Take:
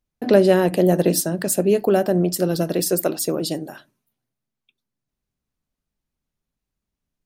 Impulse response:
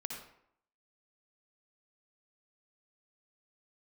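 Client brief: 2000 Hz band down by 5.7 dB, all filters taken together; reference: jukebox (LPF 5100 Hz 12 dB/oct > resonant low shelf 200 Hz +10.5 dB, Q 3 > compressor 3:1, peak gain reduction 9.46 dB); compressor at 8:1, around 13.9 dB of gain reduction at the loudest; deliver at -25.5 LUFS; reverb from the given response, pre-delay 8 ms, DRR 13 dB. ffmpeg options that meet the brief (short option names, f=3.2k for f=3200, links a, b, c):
-filter_complex "[0:a]equalizer=f=2k:t=o:g=-7.5,acompressor=threshold=-24dB:ratio=8,asplit=2[a][b];[1:a]atrim=start_sample=2205,adelay=8[c];[b][c]afir=irnorm=-1:irlink=0,volume=-12.5dB[d];[a][d]amix=inputs=2:normalize=0,lowpass=5.1k,lowshelf=f=200:t=q:w=3:g=10.5,acompressor=threshold=-28dB:ratio=3,volume=5.5dB"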